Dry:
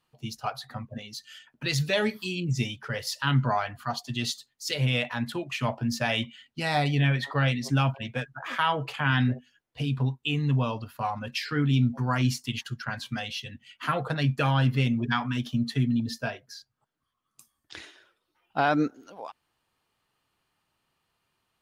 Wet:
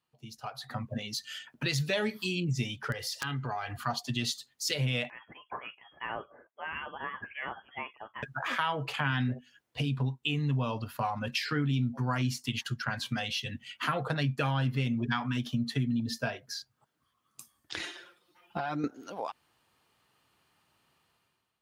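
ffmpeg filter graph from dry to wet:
ffmpeg -i in.wav -filter_complex "[0:a]asettb=1/sr,asplit=3[link_01][link_02][link_03];[link_01]atrim=end=2.924[link_04];[link_02]atrim=start=2.92:end=3.79,asetpts=PTS-STARTPTS,afade=type=in:duration=0.004:curve=qsin,afade=type=out:start_time=0.866:duration=0.004:curve=qsin,aecho=1:1:2.5:0.52,atrim=end_sample=38367,acompressor=threshold=-38dB:ratio=3:attack=3.2:release=140:knee=1:detection=peak,aeval=exprs='(mod(18.8*val(0)+1,2)-1)/18.8':channel_layout=same[link_05];[link_03]atrim=start=3.786[link_06];[link_04][link_05]acrossfade=duration=0.004:curve1=hsin:curve2=qsin[link_07];[link_07][link_06]acrossfade=duration=0.004:curve1=qsin:curve2=hsin,asettb=1/sr,asplit=3[link_08][link_09][link_10];[link_08]atrim=end=5.104[link_11];[link_09]atrim=start=5.1:end=8.23,asetpts=PTS-STARTPTS,afade=type=in:duration=0.004:curve=qsin,afade=type=out:start_time=3.126:duration=0.004:curve=qsin,highpass=frequency=670:poles=1,aderivative,lowpass=frequency=3000:width_type=q:width=0.5098,lowpass=frequency=3000:width_type=q:width=0.6013,lowpass=frequency=3000:width_type=q:width=0.9,lowpass=frequency=3000:width_type=q:width=2.563,afreqshift=-3500[link_12];[link_10]atrim=start=8.226[link_13];[link_11][link_12]acrossfade=duration=0.004:curve1=hsin:curve2=qsin[link_14];[link_14][link_13]acrossfade=duration=0.004:curve1=qsin:curve2=hsin,asettb=1/sr,asplit=3[link_15][link_16][link_17];[link_15]atrim=end=17.794[link_18];[link_16]atrim=start=17.79:end=18.84,asetpts=PTS-STARTPTS,afade=type=in:duration=0.004:curve=qsin,afade=type=out:start_time=1.046:duration=0.004:curve=qsin,aecho=1:1:5.7:0.95,atrim=end_sample=46305,acompressor=threshold=-35dB:ratio=4:attack=3.2:release=140:knee=1:detection=peak[link_19];[link_17]atrim=start=18.836[link_20];[link_18][link_19]acrossfade=duration=0.004:curve1=hsin:curve2=qsin[link_21];[link_21][link_20]acrossfade=duration=0.004:curve1=qsin:curve2=hsin,acompressor=threshold=-37dB:ratio=2.5,highpass=63,dynaudnorm=framelen=230:gausssize=5:maxgain=14dB,volume=-8.5dB" out.wav

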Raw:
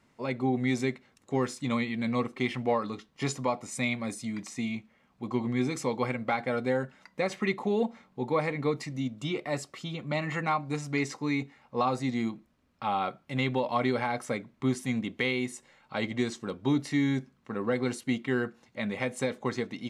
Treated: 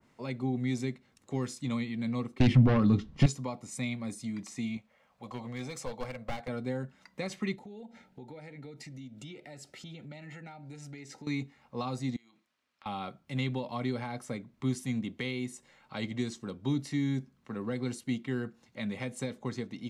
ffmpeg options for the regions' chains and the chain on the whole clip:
ffmpeg -i in.wav -filter_complex "[0:a]asettb=1/sr,asplit=3[link_01][link_02][link_03];[link_01]atrim=end=2.404[link_04];[link_02]atrim=start=2.4:end=3.26,asetpts=PTS-STARTPTS,afade=type=in:duration=0.004:curve=qsin,afade=type=out:start_time=0.856:duration=0.004:curve=qsin,aemphasis=mode=reproduction:type=bsi,aeval=exprs='0.251*sin(PI/2*2.51*val(0)/0.251)':channel_layout=same[link_05];[link_03]atrim=start=3.256[link_06];[link_04][link_05]acrossfade=duration=0.004:curve1=hsin:curve2=qsin[link_07];[link_07][link_06]acrossfade=duration=0.004:curve1=qsin:curve2=hsin,asettb=1/sr,asplit=3[link_08][link_09][link_10];[link_08]atrim=end=4.774[link_11];[link_09]atrim=start=4.77:end=6.48,asetpts=PTS-STARTPTS,afade=type=in:duration=0.004:curve=qsin,afade=type=out:start_time=1.706:duration=0.004:curve=qsin,lowshelf=frequency=430:width_type=q:width=3:gain=-6.5,aeval=exprs='clip(val(0),-1,0.0282)':channel_layout=same[link_12];[link_10]atrim=start=6.476[link_13];[link_11][link_12]acrossfade=duration=0.004:curve1=hsin:curve2=qsin[link_14];[link_14][link_13]acrossfade=duration=0.004:curve1=qsin:curve2=hsin,asettb=1/sr,asplit=3[link_15][link_16][link_17];[link_15]atrim=end=7.554[link_18];[link_16]atrim=start=7.55:end=11.27,asetpts=PTS-STARTPTS,afade=type=in:duration=0.004:curve=qsin,afade=type=out:start_time=3.716:duration=0.004:curve=qsin,asuperstop=centerf=1100:order=12:qfactor=3.9,acompressor=threshold=-43dB:ratio=4:attack=3.2:release=140:knee=1:detection=peak[link_19];[link_17]atrim=start=11.266[link_20];[link_18][link_19]acrossfade=duration=0.004:curve1=hsin:curve2=qsin[link_21];[link_21][link_20]acrossfade=duration=0.004:curve1=qsin:curve2=hsin,asettb=1/sr,asplit=3[link_22][link_23][link_24];[link_22]atrim=end=12.164[link_25];[link_23]atrim=start=12.16:end=12.86,asetpts=PTS-STARTPTS,afade=type=in:duration=0.004:curve=qsin,afade=type=out:start_time=0.696:duration=0.004:curve=qsin,bandpass=frequency=3600:width_type=q:width=0.54,acompressor=threshold=-54dB:ratio=10:attack=3.2:release=140:knee=1:detection=peak[link_26];[link_24]atrim=start=12.856[link_27];[link_25][link_26]acrossfade=duration=0.004:curve1=hsin:curve2=qsin[link_28];[link_28][link_27]acrossfade=duration=0.004:curve1=qsin:curve2=hsin,acrossover=split=250|3000[link_29][link_30][link_31];[link_30]acompressor=threshold=-54dB:ratio=1.5[link_32];[link_29][link_32][link_31]amix=inputs=3:normalize=0,adynamicequalizer=threshold=0.00251:dfrequency=1600:dqfactor=0.7:tfrequency=1600:tqfactor=0.7:attack=5:release=100:ratio=0.375:range=2.5:mode=cutabove:tftype=highshelf" out.wav

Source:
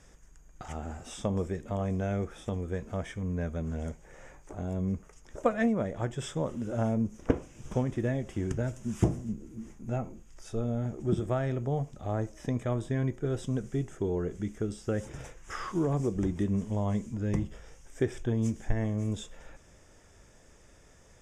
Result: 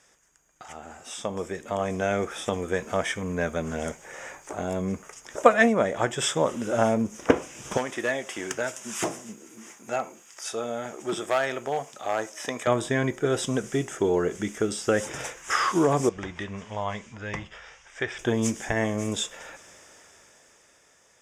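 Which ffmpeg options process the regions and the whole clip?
ffmpeg -i in.wav -filter_complex "[0:a]asettb=1/sr,asplit=3[link_01][link_02][link_03];[link_01]atrim=end=7.774[link_04];[link_02]atrim=start=7.77:end=12.67,asetpts=PTS-STARTPTS,afade=type=in:duration=0.004:curve=qsin,afade=type=out:start_time=4.896:duration=0.004:curve=qsin,highpass=frequency=680:poles=1,asoftclip=type=hard:threshold=-28.5dB[link_05];[link_03]atrim=start=12.666[link_06];[link_04][link_05]acrossfade=duration=0.004:curve1=hsin:curve2=qsin[link_07];[link_07][link_06]acrossfade=duration=0.004:curve1=qsin:curve2=hsin,asettb=1/sr,asplit=3[link_08][link_09][link_10];[link_08]atrim=end=16.094[link_11];[link_09]atrim=start=16.09:end=18.19,asetpts=PTS-STARTPTS,afade=type=in:duration=0.004:curve=qsin,afade=type=out:start_time=2.096:duration=0.004:curve=qsin,lowpass=3400,equalizer=frequency=280:width=0.59:gain=-14.5[link_12];[link_10]atrim=start=18.186[link_13];[link_11][link_12]acrossfade=duration=0.004:curve1=hsin:curve2=qsin[link_14];[link_14][link_13]acrossfade=duration=0.004:curve1=qsin:curve2=hsin,highpass=frequency=890:poles=1,dynaudnorm=framelen=200:gausssize=17:maxgain=13.5dB,volume=2.5dB" out.wav

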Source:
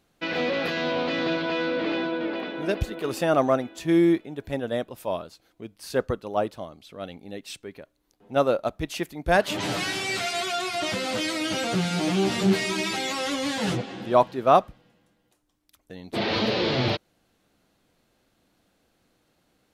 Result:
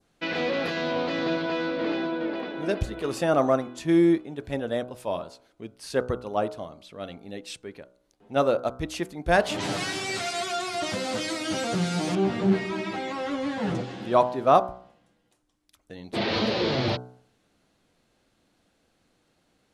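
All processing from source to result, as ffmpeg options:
ffmpeg -i in.wav -filter_complex "[0:a]asettb=1/sr,asplit=3[link_01][link_02][link_03];[link_01]atrim=end=12.154[link_04];[link_02]atrim=start=12.15:end=13.75,asetpts=PTS-STARTPTS,afade=type=in:duration=0.004:curve=qsin,afade=type=out:start_time=1.596:duration=0.004:curve=qsin,highshelf=frequency=3600:gain=-7,acrossover=split=3500[link_05][link_06];[link_06]acompressor=threshold=-52dB:ratio=4:attack=1:release=60[link_07];[link_05][link_07]amix=inputs=2:normalize=0[link_08];[link_03]atrim=start=13.746[link_09];[link_04][link_08]acrossfade=duration=0.004:curve1=hsin:curve2=qsin[link_10];[link_10][link_09]acrossfade=duration=0.004:curve1=qsin:curve2=hsin,lowpass=frequency=11000:width=0.5412,lowpass=frequency=11000:width=1.3066,bandreject=frequency=62.23:width_type=h:width=4,bandreject=frequency=124.46:width_type=h:width=4,bandreject=frequency=186.69:width_type=h:width=4,bandreject=frequency=248.92:width_type=h:width=4,bandreject=frequency=311.15:width_type=h:width=4,bandreject=frequency=373.38:width_type=h:width=4,bandreject=frequency=435.61:width_type=h:width=4,bandreject=frequency=497.84:width_type=h:width=4,bandreject=frequency=560.07:width_type=h:width=4,bandreject=frequency=622.3:width_type=h:width=4,bandreject=frequency=684.53:width_type=h:width=4,bandreject=frequency=746.76:width_type=h:width=4,bandreject=frequency=808.99:width_type=h:width=4,bandreject=frequency=871.22:width_type=h:width=4,bandreject=frequency=933.45:width_type=h:width=4,bandreject=frequency=995.68:width_type=h:width=4,bandreject=frequency=1057.91:width_type=h:width=4,bandreject=frequency=1120.14:width_type=h:width=4,bandreject=frequency=1182.37:width_type=h:width=4,bandreject=frequency=1244.6:width_type=h:width=4,bandreject=frequency=1306.83:width_type=h:width=4,bandreject=frequency=1369.06:width_type=h:width=4,bandreject=frequency=1431.29:width_type=h:width=4,bandreject=frequency=1493.52:width_type=h:width=4,bandreject=frequency=1555.75:width_type=h:width=4,adynamicequalizer=threshold=0.00631:dfrequency=2700:dqfactor=1.1:tfrequency=2700:tqfactor=1.1:attack=5:release=100:ratio=0.375:range=2.5:mode=cutabove:tftype=bell" out.wav

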